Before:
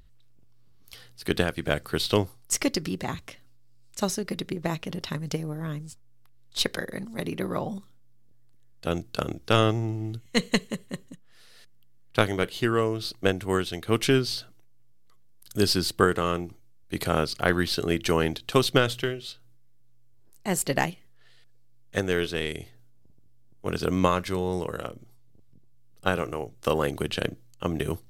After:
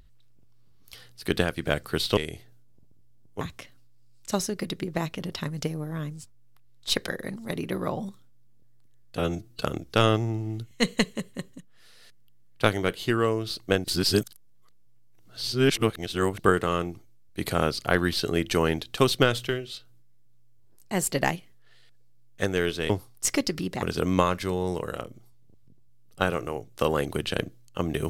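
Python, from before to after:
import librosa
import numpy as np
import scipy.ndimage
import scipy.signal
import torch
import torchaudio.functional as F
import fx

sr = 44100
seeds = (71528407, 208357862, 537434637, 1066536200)

y = fx.edit(x, sr, fx.swap(start_s=2.17, length_s=0.93, other_s=22.44, other_length_s=1.24),
    fx.stretch_span(start_s=8.87, length_s=0.29, factor=1.5),
    fx.reverse_span(start_s=13.39, length_s=2.55), tone=tone)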